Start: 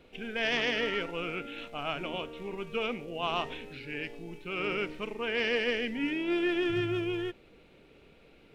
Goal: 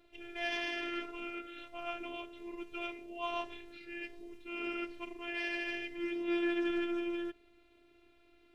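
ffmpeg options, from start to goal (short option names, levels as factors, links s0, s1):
-af "aeval=exprs='0.158*(cos(1*acos(clip(val(0)/0.158,-1,1)))-cos(1*PI/2))+0.002*(cos(7*acos(clip(val(0)/0.158,-1,1)))-cos(7*PI/2))':c=same,afftfilt=real='hypot(re,im)*cos(PI*b)':imag='0':win_size=512:overlap=0.75,volume=0.708"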